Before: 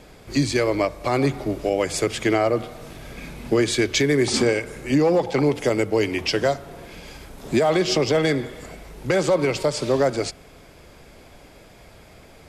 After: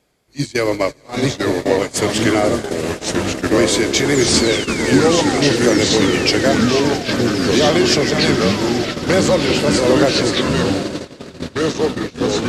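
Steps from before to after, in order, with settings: repeated pitch sweeps -1 st, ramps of 0.179 s; HPF 84 Hz 6 dB/oct; high shelf 4200 Hz +7 dB; swelling echo 83 ms, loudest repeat 8, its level -17 dB; painted sound fall, 4.14–5.75, 340–7500 Hz -31 dBFS; echoes that change speed 0.741 s, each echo -3 st, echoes 3; gate -22 dBFS, range -21 dB; gain +4 dB

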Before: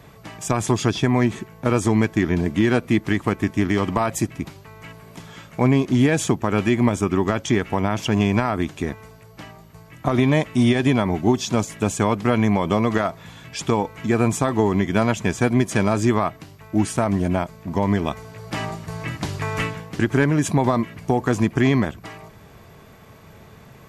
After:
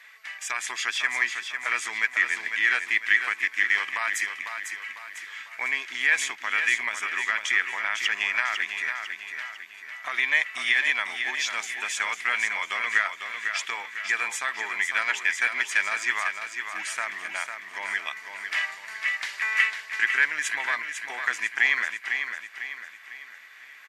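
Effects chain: resonant high-pass 1900 Hz, resonance Q 3.9; high shelf 10000 Hz -8 dB; feedback echo 0.5 s, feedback 44%, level -7 dB; gain -2 dB

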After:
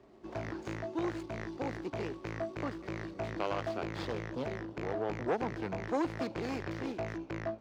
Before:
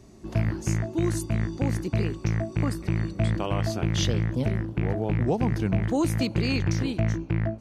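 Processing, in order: median filter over 15 samples; three-band isolator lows -16 dB, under 330 Hz, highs -16 dB, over 6500 Hz; core saturation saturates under 900 Hz; gain -1 dB

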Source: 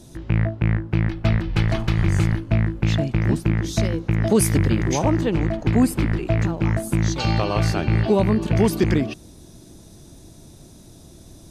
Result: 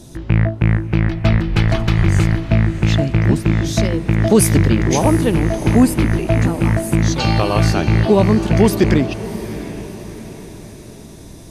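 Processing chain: diffused feedback echo 0.69 s, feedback 49%, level -13 dB; gain +5.5 dB

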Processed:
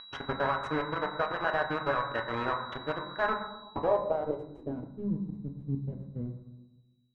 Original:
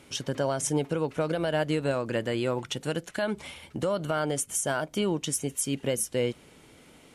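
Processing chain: vibrato 8.5 Hz 33 cents; de-hum 195.5 Hz, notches 24; compressor 3:1, threshold -41 dBFS, peak gain reduction 14 dB; reverb removal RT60 1.7 s; companded quantiser 2-bit; bell 210 Hz -11 dB 0.34 oct; gate -32 dBFS, range -30 dB; whine 3900 Hz -29 dBFS; on a send at -5.5 dB: thirty-one-band EQ 200 Hz +12 dB, 1000 Hz +10 dB, 2000 Hz +7 dB + reverb RT60 1.1 s, pre-delay 6 ms; on the sum: low-pass sweep 1400 Hz -> 190 Hz, 3.42–5.12

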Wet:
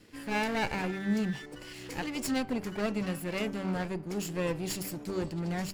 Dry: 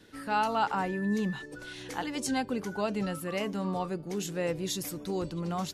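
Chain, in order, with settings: minimum comb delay 0.4 ms; de-hum 193.8 Hz, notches 17

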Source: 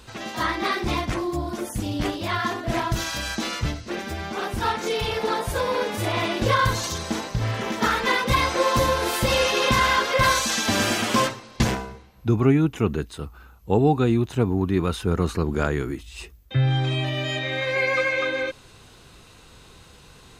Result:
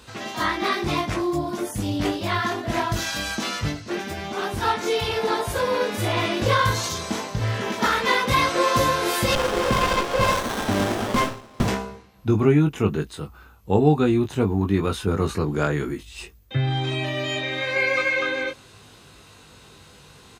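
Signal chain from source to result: HPF 70 Hz; doubler 20 ms -5 dB; 9.35–11.68 running maximum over 17 samples

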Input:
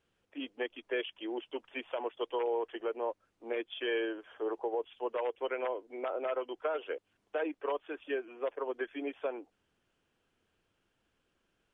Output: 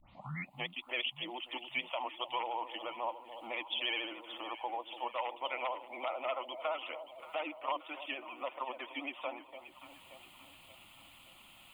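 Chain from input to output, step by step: tape start at the beginning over 0.60 s; tilt +2.5 dB/oct; in parallel at +2 dB: upward compressor, threshold -35 dBFS; on the sum: vibrato 14 Hz 77 cents; fixed phaser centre 1600 Hz, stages 6; on a send: echo with dull and thin repeats by turns 0.289 s, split 820 Hz, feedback 69%, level -10 dB; on the sum: gain -3.5 dB

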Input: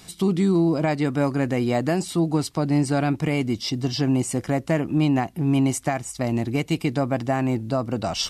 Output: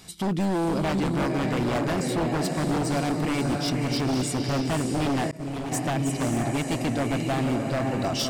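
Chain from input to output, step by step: diffused feedback echo 0.555 s, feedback 49%, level -4 dB; wavefolder -17.5 dBFS; 5.31–5.72 expander -16 dBFS; gain -2 dB

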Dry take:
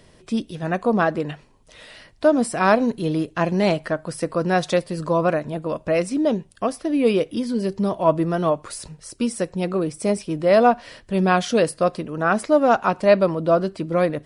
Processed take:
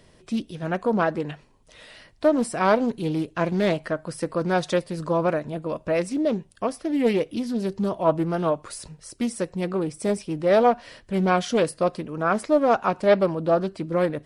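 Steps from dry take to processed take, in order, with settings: Doppler distortion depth 0.23 ms; gain -3 dB

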